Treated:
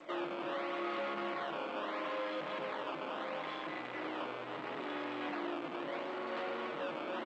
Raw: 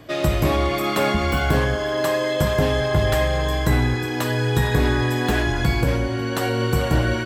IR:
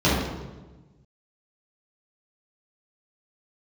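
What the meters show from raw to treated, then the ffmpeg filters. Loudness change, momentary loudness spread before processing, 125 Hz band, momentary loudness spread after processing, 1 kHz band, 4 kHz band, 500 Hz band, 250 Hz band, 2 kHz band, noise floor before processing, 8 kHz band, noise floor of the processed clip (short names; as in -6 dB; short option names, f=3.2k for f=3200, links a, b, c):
-18.5 dB, 3 LU, -39.5 dB, 3 LU, -13.0 dB, -18.5 dB, -17.5 dB, -18.5 dB, -17.5 dB, -25 dBFS, under -30 dB, -43 dBFS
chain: -filter_complex "[0:a]aecho=1:1:5.6:0.65,adynamicequalizer=threshold=0.00794:dfrequency=2200:dqfactor=1.4:tfrequency=2200:tqfactor=1.4:attack=5:release=100:ratio=0.375:range=3:mode=cutabove:tftype=bell,alimiter=limit=-14.5dB:level=0:latency=1,acrusher=samples=13:mix=1:aa=0.000001:lfo=1:lforange=20.8:lforate=0.75,asoftclip=type=hard:threshold=-29.5dB,acrusher=bits=3:mode=log:mix=0:aa=0.000001,highpass=f=310:w=0.5412,highpass=f=310:w=1.3066,equalizer=f=400:t=q:w=4:g=-8,equalizer=f=750:t=q:w=4:g=-5,equalizer=f=1.6k:t=q:w=4:g=-4,lowpass=f=3k:w=0.5412,lowpass=f=3k:w=1.3066,asplit=2[a][b];[b]adelay=300,highpass=300,lowpass=3.4k,asoftclip=type=hard:threshold=-33.5dB,volume=-20dB[c];[a][c]amix=inputs=2:normalize=0,asplit=2[d][e];[1:a]atrim=start_sample=2205,atrim=end_sample=6615[f];[e][f]afir=irnorm=-1:irlink=0,volume=-30dB[g];[d][g]amix=inputs=2:normalize=0,volume=-3dB" -ar 16000 -c:a g722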